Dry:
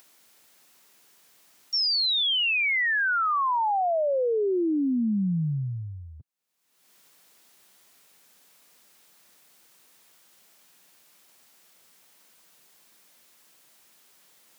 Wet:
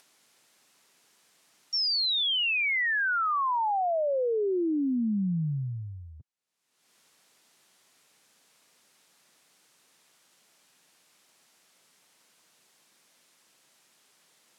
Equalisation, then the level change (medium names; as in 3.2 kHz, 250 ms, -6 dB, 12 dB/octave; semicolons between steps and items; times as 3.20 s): low-pass 9.9 kHz 12 dB/octave; -2.5 dB